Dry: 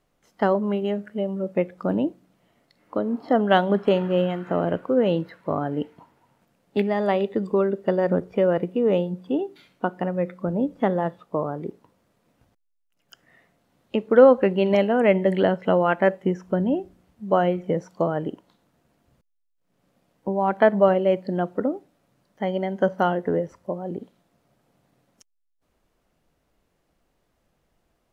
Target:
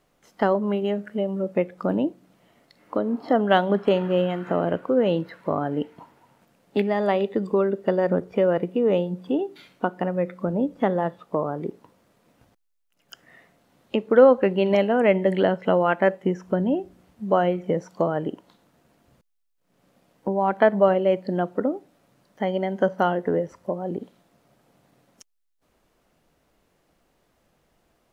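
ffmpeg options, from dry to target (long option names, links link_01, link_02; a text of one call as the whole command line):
ffmpeg -i in.wav -filter_complex "[0:a]lowshelf=frequency=110:gain=-6,asplit=2[link_01][link_02];[link_02]acompressor=threshold=-33dB:ratio=6,volume=1.5dB[link_03];[link_01][link_03]amix=inputs=2:normalize=0,volume=-1.5dB" out.wav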